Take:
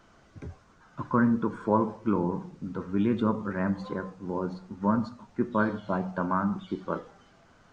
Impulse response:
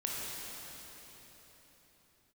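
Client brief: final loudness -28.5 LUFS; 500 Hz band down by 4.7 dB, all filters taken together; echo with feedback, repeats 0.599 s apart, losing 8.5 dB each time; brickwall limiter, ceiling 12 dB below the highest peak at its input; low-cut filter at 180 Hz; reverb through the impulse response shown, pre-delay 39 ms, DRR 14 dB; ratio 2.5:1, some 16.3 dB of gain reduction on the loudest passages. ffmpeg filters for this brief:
-filter_complex "[0:a]highpass=180,equalizer=f=500:t=o:g=-6,acompressor=threshold=-48dB:ratio=2.5,alimiter=level_in=16.5dB:limit=-24dB:level=0:latency=1,volume=-16.5dB,aecho=1:1:599|1198|1797|2396:0.376|0.143|0.0543|0.0206,asplit=2[a][b];[1:a]atrim=start_sample=2205,adelay=39[c];[b][c]afir=irnorm=-1:irlink=0,volume=-18.5dB[d];[a][d]amix=inputs=2:normalize=0,volume=22dB"

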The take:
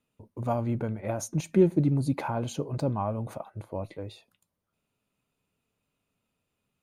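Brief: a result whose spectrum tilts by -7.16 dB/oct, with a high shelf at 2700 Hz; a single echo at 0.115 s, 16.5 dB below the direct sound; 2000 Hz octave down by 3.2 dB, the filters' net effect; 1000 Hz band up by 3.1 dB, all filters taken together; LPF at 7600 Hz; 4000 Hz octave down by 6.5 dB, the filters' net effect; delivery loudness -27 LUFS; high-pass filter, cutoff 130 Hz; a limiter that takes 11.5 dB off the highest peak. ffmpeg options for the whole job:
-af "highpass=130,lowpass=7.6k,equalizer=f=1k:t=o:g=5.5,equalizer=f=2k:t=o:g=-4.5,highshelf=f=2.7k:g=-4,equalizer=f=4k:t=o:g=-3.5,alimiter=limit=-21.5dB:level=0:latency=1,aecho=1:1:115:0.15,volume=6.5dB"

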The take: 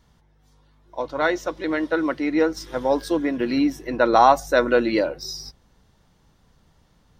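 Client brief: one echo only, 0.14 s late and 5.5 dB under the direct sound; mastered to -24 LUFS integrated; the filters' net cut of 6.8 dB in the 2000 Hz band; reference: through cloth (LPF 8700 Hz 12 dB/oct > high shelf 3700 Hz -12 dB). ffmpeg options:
-af "lowpass=8.7k,equalizer=f=2k:t=o:g=-7.5,highshelf=f=3.7k:g=-12,aecho=1:1:140:0.531,volume=-2.5dB"

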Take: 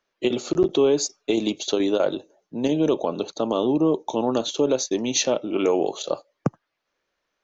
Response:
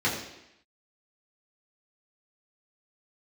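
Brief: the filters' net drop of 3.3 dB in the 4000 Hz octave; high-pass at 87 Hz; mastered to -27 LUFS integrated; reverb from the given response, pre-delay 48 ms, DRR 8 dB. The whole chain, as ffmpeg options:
-filter_complex "[0:a]highpass=87,equalizer=f=4k:t=o:g=-4,asplit=2[a][b];[1:a]atrim=start_sample=2205,adelay=48[c];[b][c]afir=irnorm=-1:irlink=0,volume=-20.5dB[d];[a][d]amix=inputs=2:normalize=0,volume=-4dB"

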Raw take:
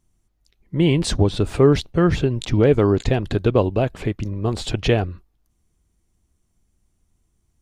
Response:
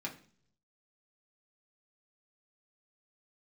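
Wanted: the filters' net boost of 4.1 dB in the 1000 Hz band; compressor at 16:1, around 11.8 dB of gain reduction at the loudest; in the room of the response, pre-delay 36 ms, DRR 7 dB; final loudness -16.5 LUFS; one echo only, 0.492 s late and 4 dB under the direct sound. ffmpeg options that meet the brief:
-filter_complex "[0:a]equalizer=f=1k:t=o:g=5.5,acompressor=threshold=-21dB:ratio=16,aecho=1:1:492:0.631,asplit=2[a][b];[1:a]atrim=start_sample=2205,adelay=36[c];[b][c]afir=irnorm=-1:irlink=0,volume=-8dB[d];[a][d]amix=inputs=2:normalize=0,volume=9dB"

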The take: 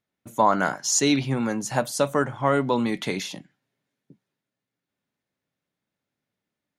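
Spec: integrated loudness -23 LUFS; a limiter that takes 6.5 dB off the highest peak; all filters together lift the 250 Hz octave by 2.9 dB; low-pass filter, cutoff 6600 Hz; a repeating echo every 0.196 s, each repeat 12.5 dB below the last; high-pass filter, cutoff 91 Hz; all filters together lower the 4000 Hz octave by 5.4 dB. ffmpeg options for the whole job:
-af "highpass=91,lowpass=6.6k,equalizer=f=250:t=o:g=3.5,equalizer=f=4k:t=o:g=-6,alimiter=limit=-13dB:level=0:latency=1,aecho=1:1:196|392|588:0.237|0.0569|0.0137,volume=2dB"

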